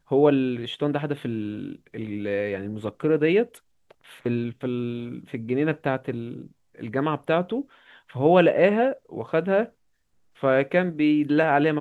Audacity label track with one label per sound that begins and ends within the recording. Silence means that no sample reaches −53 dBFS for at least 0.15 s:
3.900000	6.520000	sound
6.750000	9.720000	sound